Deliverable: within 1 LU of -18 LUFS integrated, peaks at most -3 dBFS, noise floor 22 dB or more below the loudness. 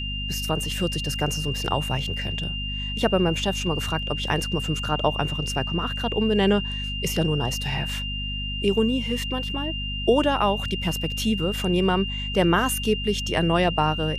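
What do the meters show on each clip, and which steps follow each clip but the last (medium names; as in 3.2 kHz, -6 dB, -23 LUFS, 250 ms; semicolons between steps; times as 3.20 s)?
hum 50 Hz; highest harmonic 250 Hz; hum level -29 dBFS; steady tone 2.8 kHz; tone level -30 dBFS; loudness -24.5 LUFS; peak level -7.0 dBFS; loudness target -18.0 LUFS
-> de-hum 50 Hz, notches 5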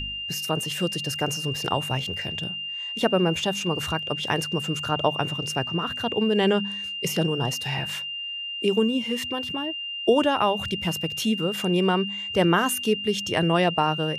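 hum not found; steady tone 2.8 kHz; tone level -30 dBFS
-> band-stop 2.8 kHz, Q 30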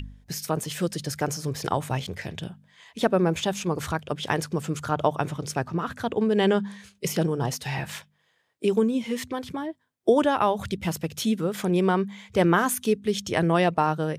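steady tone not found; loudness -26.0 LUFS; peak level -7.5 dBFS; loudness target -18.0 LUFS
-> trim +8 dB; peak limiter -3 dBFS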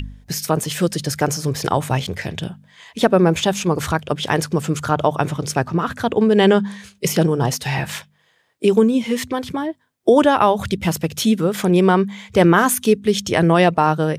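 loudness -18.5 LUFS; peak level -3.0 dBFS; noise floor -60 dBFS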